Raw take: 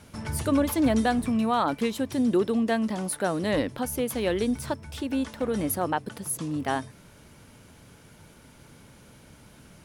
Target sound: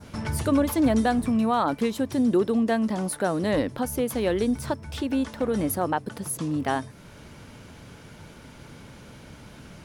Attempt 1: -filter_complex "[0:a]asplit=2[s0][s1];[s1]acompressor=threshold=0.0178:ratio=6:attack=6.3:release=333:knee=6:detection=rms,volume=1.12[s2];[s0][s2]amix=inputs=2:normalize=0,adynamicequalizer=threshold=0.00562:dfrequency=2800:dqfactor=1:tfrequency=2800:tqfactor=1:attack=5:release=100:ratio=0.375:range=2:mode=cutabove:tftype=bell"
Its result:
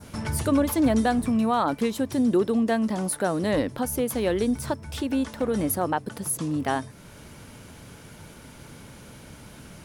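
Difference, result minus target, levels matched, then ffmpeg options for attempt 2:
8 kHz band +3.0 dB
-filter_complex "[0:a]asplit=2[s0][s1];[s1]acompressor=threshold=0.0178:ratio=6:attack=6.3:release=333:knee=6:detection=rms,lowpass=7200,volume=1.12[s2];[s0][s2]amix=inputs=2:normalize=0,adynamicequalizer=threshold=0.00562:dfrequency=2800:dqfactor=1:tfrequency=2800:tqfactor=1:attack=5:release=100:ratio=0.375:range=2:mode=cutabove:tftype=bell"

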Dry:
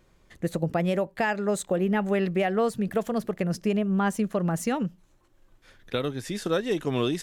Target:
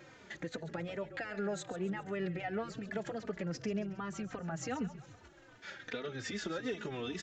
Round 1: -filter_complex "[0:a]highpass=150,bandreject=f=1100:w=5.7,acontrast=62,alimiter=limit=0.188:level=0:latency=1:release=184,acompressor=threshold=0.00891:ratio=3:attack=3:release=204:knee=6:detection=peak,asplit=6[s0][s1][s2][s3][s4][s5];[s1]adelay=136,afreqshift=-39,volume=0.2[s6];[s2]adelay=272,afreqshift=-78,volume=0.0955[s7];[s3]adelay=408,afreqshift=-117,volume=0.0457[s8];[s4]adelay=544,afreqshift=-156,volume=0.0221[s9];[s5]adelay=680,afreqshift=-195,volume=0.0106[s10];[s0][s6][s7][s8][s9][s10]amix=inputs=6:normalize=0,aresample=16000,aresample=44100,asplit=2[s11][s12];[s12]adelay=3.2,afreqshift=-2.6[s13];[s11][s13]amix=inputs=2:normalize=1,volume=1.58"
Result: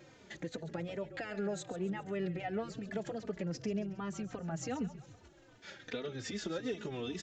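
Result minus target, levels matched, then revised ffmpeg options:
2 kHz band -3.5 dB
-filter_complex "[0:a]highpass=150,equalizer=f=1500:w=0.87:g=6.5,bandreject=f=1100:w=5.7,acontrast=62,alimiter=limit=0.188:level=0:latency=1:release=184,acompressor=threshold=0.00891:ratio=3:attack=3:release=204:knee=6:detection=peak,asplit=6[s0][s1][s2][s3][s4][s5];[s1]adelay=136,afreqshift=-39,volume=0.2[s6];[s2]adelay=272,afreqshift=-78,volume=0.0955[s7];[s3]adelay=408,afreqshift=-117,volume=0.0457[s8];[s4]adelay=544,afreqshift=-156,volume=0.0221[s9];[s5]adelay=680,afreqshift=-195,volume=0.0106[s10];[s0][s6][s7][s8][s9][s10]amix=inputs=6:normalize=0,aresample=16000,aresample=44100,asplit=2[s11][s12];[s12]adelay=3.2,afreqshift=-2.6[s13];[s11][s13]amix=inputs=2:normalize=1,volume=1.58"

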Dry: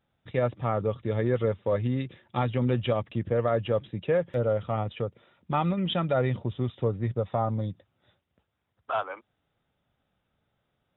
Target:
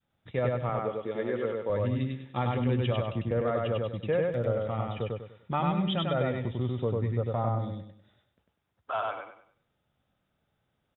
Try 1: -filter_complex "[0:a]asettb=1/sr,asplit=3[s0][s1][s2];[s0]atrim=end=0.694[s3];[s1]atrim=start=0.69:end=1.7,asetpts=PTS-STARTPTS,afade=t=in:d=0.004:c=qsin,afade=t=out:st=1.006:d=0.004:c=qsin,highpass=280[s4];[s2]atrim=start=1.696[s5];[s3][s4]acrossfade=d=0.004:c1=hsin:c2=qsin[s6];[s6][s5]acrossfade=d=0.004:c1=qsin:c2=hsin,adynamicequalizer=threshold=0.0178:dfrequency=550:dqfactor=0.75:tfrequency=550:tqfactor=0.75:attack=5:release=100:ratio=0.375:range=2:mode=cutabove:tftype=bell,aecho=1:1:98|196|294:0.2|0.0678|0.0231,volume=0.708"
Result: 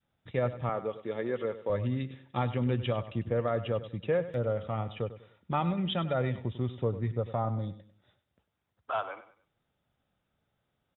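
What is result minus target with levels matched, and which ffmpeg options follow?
echo-to-direct -12 dB
-filter_complex "[0:a]asettb=1/sr,asplit=3[s0][s1][s2];[s0]atrim=end=0.694[s3];[s1]atrim=start=0.69:end=1.7,asetpts=PTS-STARTPTS,afade=t=in:d=0.004:c=qsin,afade=t=out:st=1.006:d=0.004:c=qsin,highpass=280[s4];[s2]atrim=start=1.696[s5];[s3][s4]acrossfade=d=0.004:c1=hsin:c2=qsin[s6];[s6][s5]acrossfade=d=0.004:c1=qsin:c2=hsin,adynamicequalizer=threshold=0.0178:dfrequency=550:dqfactor=0.75:tfrequency=550:tqfactor=0.75:attack=5:release=100:ratio=0.375:range=2:mode=cutabove:tftype=bell,aecho=1:1:98|196|294|392|490:0.794|0.27|0.0918|0.0312|0.0106,volume=0.708"

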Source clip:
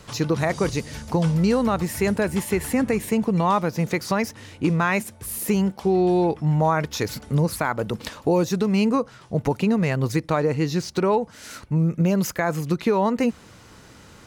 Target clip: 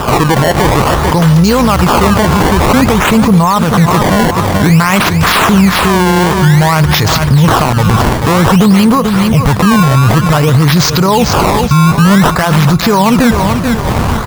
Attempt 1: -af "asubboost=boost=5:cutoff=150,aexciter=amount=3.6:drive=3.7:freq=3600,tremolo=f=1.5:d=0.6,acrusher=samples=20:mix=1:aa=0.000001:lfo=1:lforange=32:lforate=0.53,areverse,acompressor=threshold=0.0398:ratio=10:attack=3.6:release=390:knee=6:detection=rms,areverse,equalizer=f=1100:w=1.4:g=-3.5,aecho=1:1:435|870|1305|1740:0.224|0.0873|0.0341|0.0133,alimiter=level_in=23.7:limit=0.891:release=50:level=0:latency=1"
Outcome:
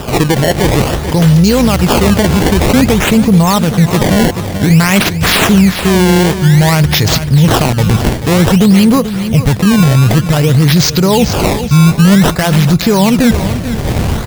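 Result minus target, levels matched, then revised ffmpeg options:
compression: peak gain reduction +6 dB; 1 kHz band -6.0 dB
-af "asubboost=boost=5:cutoff=150,aexciter=amount=3.6:drive=3.7:freq=3600,tremolo=f=1.5:d=0.6,acrusher=samples=20:mix=1:aa=0.000001:lfo=1:lforange=32:lforate=0.53,areverse,acompressor=threshold=0.0841:ratio=10:attack=3.6:release=390:knee=6:detection=rms,areverse,equalizer=f=1100:w=1.4:g=7,aecho=1:1:435|870|1305|1740:0.224|0.0873|0.0341|0.0133,alimiter=level_in=23.7:limit=0.891:release=50:level=0:latency=1"

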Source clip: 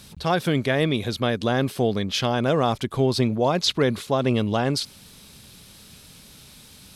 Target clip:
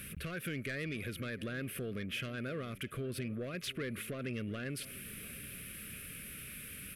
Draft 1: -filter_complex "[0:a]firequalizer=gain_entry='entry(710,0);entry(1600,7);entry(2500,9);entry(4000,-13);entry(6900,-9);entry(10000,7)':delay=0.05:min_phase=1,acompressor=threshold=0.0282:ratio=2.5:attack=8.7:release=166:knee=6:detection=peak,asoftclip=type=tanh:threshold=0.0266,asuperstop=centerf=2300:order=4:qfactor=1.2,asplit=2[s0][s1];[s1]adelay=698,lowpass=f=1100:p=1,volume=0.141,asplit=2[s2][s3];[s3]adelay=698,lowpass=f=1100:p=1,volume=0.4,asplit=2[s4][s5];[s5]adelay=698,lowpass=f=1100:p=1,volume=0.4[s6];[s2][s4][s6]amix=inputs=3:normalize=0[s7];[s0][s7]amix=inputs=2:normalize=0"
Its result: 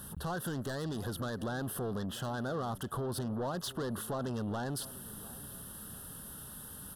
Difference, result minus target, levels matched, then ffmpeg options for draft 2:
1 kHz band +9.0 dB; compression: peak gain reduction -6.5 dB
-filter_complex "[0:a]firequalizer=gain_entry='entry(710,0);entry(1600,7);entry(2500,9);entry(4000,-13);entry(6900,-9);entry(10000,7)':delay=0.05:min_phase=1,acompressor=threshold=0.00841:ratio=2.5:attack=8.7:release=166:knee=6:detection=peak,asoftclip=type=tanh:threshold=0.0266,asuperstop=centerf=870:order=4:qfactor=1.2,asplit=2[s0][s1];[s1]adelay=698,lowpass=f=1100:p=1,volume=0.141,asplit=2[s2][s3];[s3]adelay=698,lowpass=f=1100:p=1,volume=0.4,asplit=2[s4][s5];[s5]adelay=698,lowpass=f=1100:p=1,volume=0.4[s6];[s2][s4][s6]amix=inputs=3:normalize=0[s7];[s0][s7]amix=inputs=2:normalize=0"

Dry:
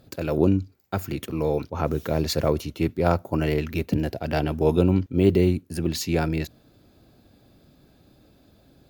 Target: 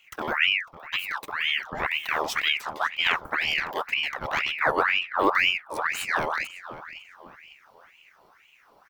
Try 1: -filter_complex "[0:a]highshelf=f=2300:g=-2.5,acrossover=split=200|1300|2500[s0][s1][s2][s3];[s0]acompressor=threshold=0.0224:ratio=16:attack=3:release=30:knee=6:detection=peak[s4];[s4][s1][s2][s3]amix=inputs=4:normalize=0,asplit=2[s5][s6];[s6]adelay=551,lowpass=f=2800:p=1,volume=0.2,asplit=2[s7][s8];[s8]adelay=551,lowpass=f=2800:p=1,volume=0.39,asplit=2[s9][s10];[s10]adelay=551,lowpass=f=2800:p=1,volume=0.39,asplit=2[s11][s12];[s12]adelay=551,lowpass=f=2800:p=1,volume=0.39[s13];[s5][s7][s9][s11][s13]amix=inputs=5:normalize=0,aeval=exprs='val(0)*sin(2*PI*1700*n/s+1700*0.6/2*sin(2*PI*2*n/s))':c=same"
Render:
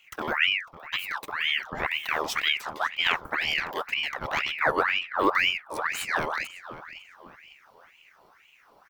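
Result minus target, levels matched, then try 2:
compression: peak gain reduction +9 dB
-filter_complex "[0:a]highshelf=f=2300:g=-2.5,acrossover=split=200|1300|2500[s0][s1][s2][s3];[s0]acompressor=threshold=0.0708:ratio=16:attack=3:release=30:knee=6:detection=peak[s4];[s4][s1][s2][s3]amix=inputs=4:normalize=0,asplit=2[s5][s6];[s6]adelay=551,lowpass=f=2800:p=1,volume=0.2,asplit=2[s7][s8];[s8]adelay=551,lowpass=f=2800:p=1,volume=0.39,asplit=2[s9][s10];[s10]adelay=551,lowpass=f=2800:p=1,volume=0.39,asplit=2[s11][s12];[s12]adelay=551,lowpass=f=2800:p=1,volume=0.39[s13];[s5][s7][s9][s11][s13]amix=inputs=5:normalize=0,aeval=exprs='val(0)*sin(2*PI*1700*n/s+1700*0.6/2*sin(2*PI*2*n/s))':c=same"

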